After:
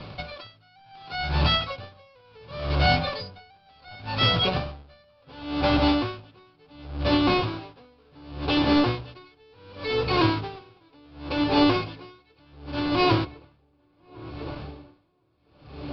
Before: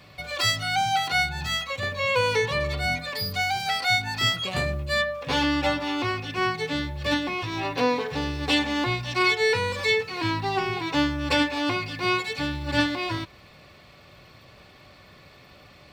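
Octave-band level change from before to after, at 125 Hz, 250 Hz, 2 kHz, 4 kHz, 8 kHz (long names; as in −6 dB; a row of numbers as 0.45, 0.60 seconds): +2.5 dB, +2.5 dB, −7.0 dB, −2.0 dB, below −20 dB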